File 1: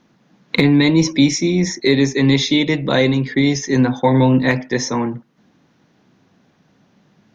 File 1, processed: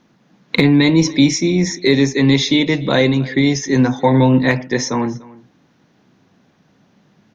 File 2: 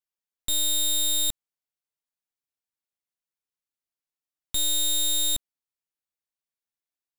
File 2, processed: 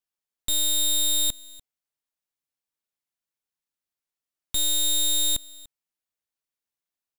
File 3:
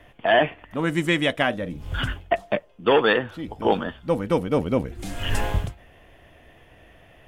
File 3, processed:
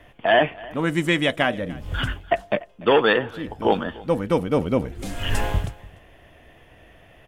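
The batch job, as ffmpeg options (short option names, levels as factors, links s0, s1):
-af "aecho=1:1:293:0.0841,volume=1.12"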